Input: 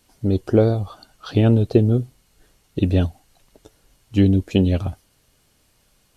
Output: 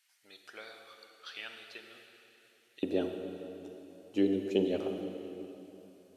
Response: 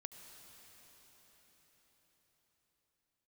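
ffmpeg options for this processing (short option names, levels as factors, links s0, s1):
-filter_complex "[0:a]asetnsamples=n=441:p=0,asendcmd='2.83 highpass f 380',highpass=f=1900:t=q:w=2[s0];[1:a]atrim=start_sample=2205,asetrate=83790,aresample=44100[s1];[s0][s1]afir=irnorm=-1:irlink=0"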